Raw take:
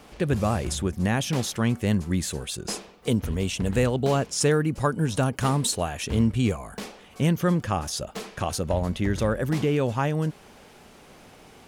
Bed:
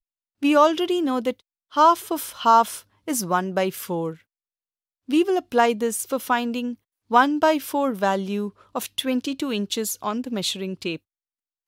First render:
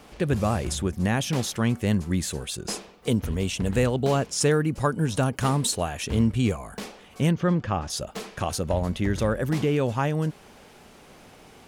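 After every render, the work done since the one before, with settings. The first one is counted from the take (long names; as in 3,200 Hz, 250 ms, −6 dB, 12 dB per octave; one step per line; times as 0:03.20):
0:07.31–0:07.90: high-frequency loss of the air 140 metres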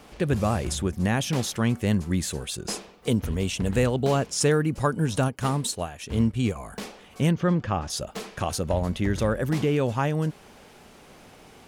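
0:05.28–0:06.56: expander for the loud parts, over −42 dBFS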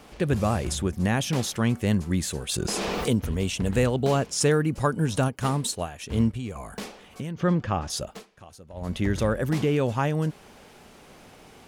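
0:02.49–0:03.08: envelope flattener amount 100%
0:06.30–0:07.42: downward compressor 12 to 1, threshold −28 dBFS
0:08.04–0:08.96: duck −19.5 dB, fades 0.22 s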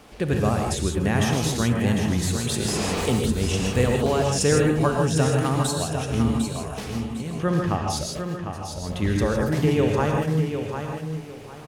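repeating echo 752 ms, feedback 26%, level −7.5 dB
reverb whose tail is shaped and stops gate 180 ms rising, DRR 1.5 dB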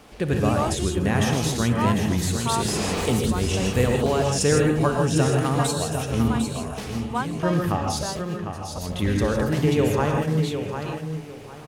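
mix in bed −11.5 dB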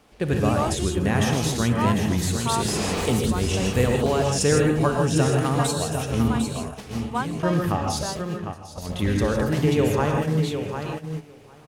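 noise gate −30 dBFS, range −8 dB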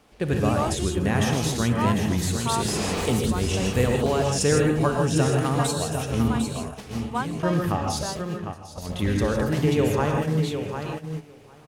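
level −1 dB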